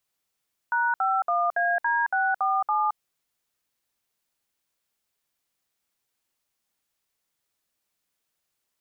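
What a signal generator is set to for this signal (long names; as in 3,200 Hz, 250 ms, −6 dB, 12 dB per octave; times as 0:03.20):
touch tones "#51AD647", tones 220 ms, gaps 61 ms, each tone −23.5 dBFS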